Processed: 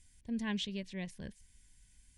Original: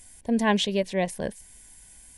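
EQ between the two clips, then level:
high-frequency loss of the air 79 metres
guitar amp tone stack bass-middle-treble 6-0-2
+6.5 dB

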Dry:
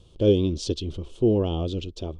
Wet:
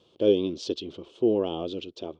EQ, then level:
band-pass filter 290–4,400 Hz
0.0 dB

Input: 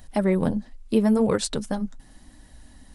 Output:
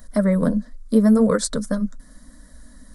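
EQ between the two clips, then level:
phaser with its sweep stopped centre 540 Hz, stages 8
+5.5 dB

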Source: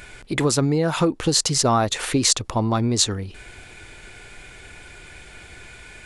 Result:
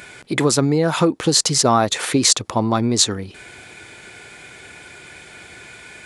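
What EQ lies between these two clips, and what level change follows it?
high-pass filter 130 Hz 12 dB per octave
notch filter 2,800 Hz, Q 22
+3.5 dB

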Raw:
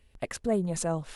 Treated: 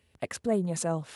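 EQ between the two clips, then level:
high-pass filter 75 Hz 24 dB per octave
0.0 dB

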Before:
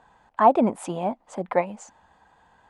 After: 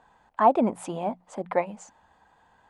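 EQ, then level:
mains-hum notches 60/120/180 Hz
−2.5 dB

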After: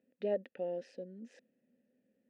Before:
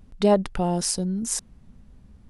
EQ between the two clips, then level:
formant filter e
band-pass filter 160–3,800 Hz
parametric band 250 Hz +14 dB 0.67 octaves
−5.5 dB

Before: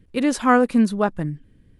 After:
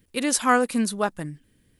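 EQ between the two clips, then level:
RIAA equalisation recording
low-shelf EQ 170 Hz +8 dB
−2.5 dB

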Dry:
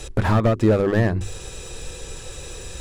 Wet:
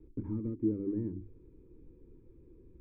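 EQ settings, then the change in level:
formant resonators in series u
Butterworth band-reject 720 Hz, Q 0.93
high-shelf EQ 2,400 Hz +7.5 dB
−6.0 dB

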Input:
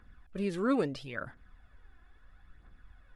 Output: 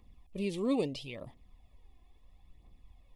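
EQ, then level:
high-shelf EQ 7,000 Hz +6 dB
dynamic equaliser 3,100 Hz, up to +5 dB, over −56 dBFS, Q 1.5
Butterworth band-reject 1,500 Hz, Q 1.3
−1.5 dB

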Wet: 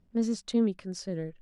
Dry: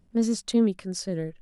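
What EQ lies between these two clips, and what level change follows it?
high-frequency loss of the air 53 metres
−4.0 dB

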